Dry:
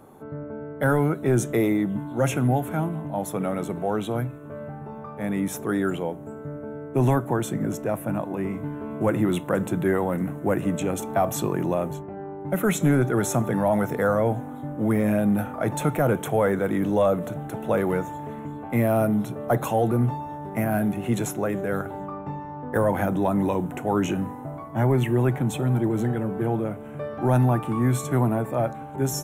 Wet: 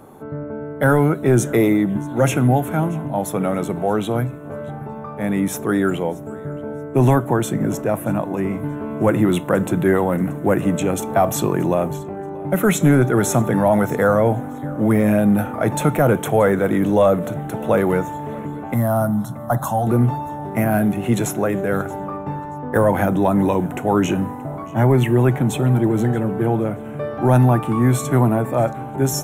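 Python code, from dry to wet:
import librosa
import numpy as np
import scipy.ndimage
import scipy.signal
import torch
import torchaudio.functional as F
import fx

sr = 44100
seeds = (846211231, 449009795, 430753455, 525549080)

p1 = fx.fixed_phaser(x, sr, hz=1000.0, stages=4, at=(18.74, 19.87))
p2 = p1 + fx.echo_feedback(p1, sr, ms=629, feedback_pct=27, wet_db=-22.0, dry=0)
y = F.gain(torch.from_numpy(p2), 6.0).numpy()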